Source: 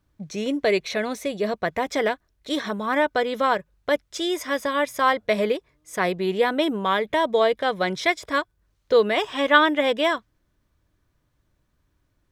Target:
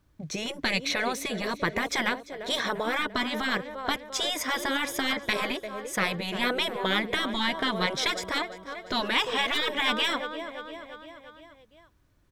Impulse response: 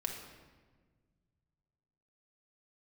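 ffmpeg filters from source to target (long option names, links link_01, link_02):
-af "aeval=exprs='0.631*(cos(1*acos(clip(val(0)/0.631,-1,1)))-cos(1*PI/2))+0.0141*(cos(6*acos(clip(val(0)/0.631,-1,1)))-cos(6*PI/2))':channel_layout=same,aecho=1:1:345|690|1035|1380|1725:0.106|0.0614|0.0356|0.0207|0.012,afftfilt=real='re*lt(hypot(re,im),0.282)':imag='im*lt(hypot(re,im),0.282)':win_size=1024:overlap=0.75,volume=3dB"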